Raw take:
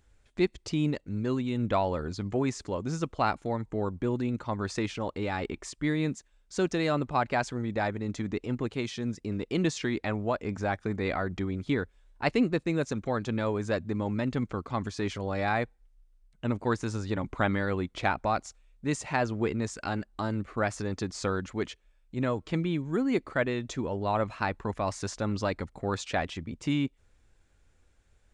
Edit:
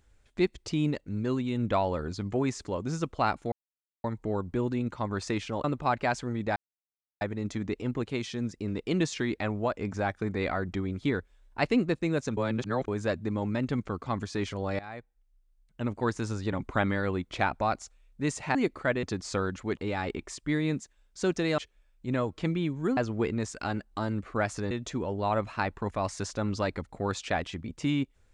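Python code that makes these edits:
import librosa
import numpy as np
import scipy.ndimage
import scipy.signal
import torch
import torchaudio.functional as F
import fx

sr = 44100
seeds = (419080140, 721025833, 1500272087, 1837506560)

y = fx.edit(x, sr, fx.insert_silence(at_s=3.52, length_s=0.52),
    fx.move(start_s=5.12, length_s=1.81, to_s=21.67),
    fx.insert_silence(at_s=7.85, length_s=0.65),
    fx.reverse_span(start_s=13.01, length_s=0.51),
    fx.fade_in_from(start_s=15.43, length_s=1.4, floor_db=-18.0),
    fx.swap(start_s=19.19, length_s=1.74, other_s=23.06, other_length_s=0.48), tone=tone)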